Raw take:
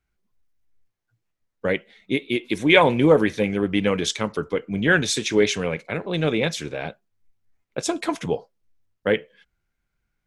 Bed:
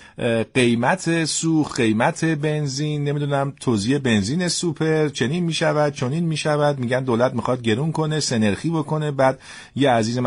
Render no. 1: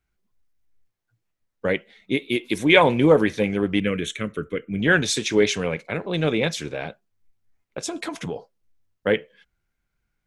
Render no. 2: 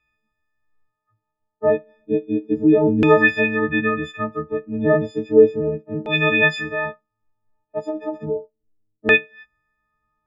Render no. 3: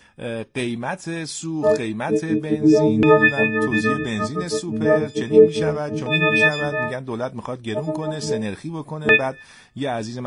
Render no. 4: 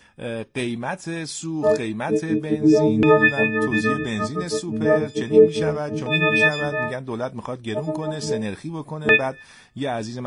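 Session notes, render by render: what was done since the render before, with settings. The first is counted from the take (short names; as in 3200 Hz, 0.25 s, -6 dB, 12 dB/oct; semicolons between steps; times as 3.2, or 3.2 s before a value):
2.18–2.65 high shelf 9100 Hz +10.5 dB; 3.8–4.8 fixed phaser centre 2100 Hz, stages 4; 6.82–8.36 compressor, threshold -25 dBFS
frequency quantiser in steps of 6 st; LFO low-pass saw down 0.33 Hz 290–2600 Hz
add bed -8 dB
gain -1 dB; limiter -3 dBFS, peak gain reduction 1 dB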